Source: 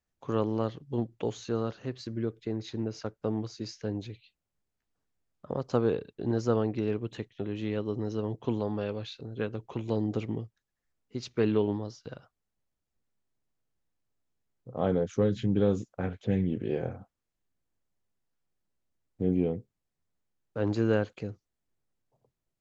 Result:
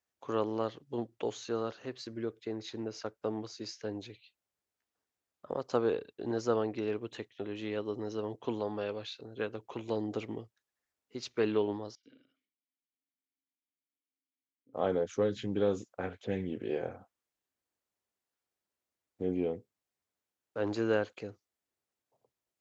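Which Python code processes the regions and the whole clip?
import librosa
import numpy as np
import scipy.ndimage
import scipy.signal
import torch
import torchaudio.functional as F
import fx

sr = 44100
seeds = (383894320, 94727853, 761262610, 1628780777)

y = fx.chain(x, sr, fx.vowel_filter(vowel='i'),
    fx.echo_single(ms=81, db=-7.0),
    fx.sustainer(db_per_s=130.0), at=(11.95, 14.74))
y = scipy.signal.sosfilt(scipy.signal.butter(2, 110.0, 'highpass', fs=sr, output='sos'), y)
y = fx.peak_eq(y, sr, hz=150.0, db=-12.0, octaves=1.5)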